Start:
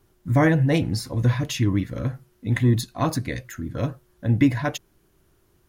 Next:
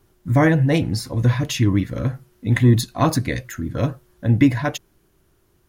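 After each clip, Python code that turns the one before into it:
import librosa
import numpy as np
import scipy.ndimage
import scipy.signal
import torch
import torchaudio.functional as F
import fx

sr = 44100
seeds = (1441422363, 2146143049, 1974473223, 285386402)

y = fx.rider(x, sr, range_db=4, speed_s=2.0)
y = y * 10.0 ** (3.0 / 20.0)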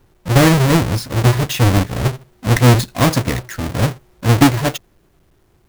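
y = fx.halfwave_hold(x, sr)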